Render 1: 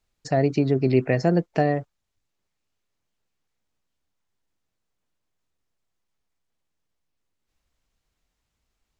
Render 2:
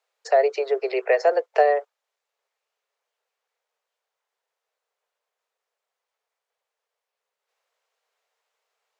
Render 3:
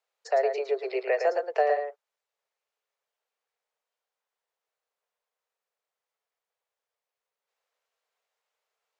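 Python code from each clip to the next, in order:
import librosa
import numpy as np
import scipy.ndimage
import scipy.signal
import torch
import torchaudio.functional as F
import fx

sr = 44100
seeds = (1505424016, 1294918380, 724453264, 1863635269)

y1 = scipy.signal.sosfilt(scipy.signal.butter(12, 430.0, 'highpass', fs=sr, output='sos'), x)
y1 = fx.high_shelf(y1, sr, hz=3000.0, db=-9.0)
y1 = y1 * librosa.db_to_amplitude(6.5)
y2 = y1 + 10.0 ** (-6.5 / 20.0) * np.pad(y1, (int(111 * sr / 1000.0), 0))[:len(y1)]
y2 = y2 * librosa.db_to_amplitude(-6.5)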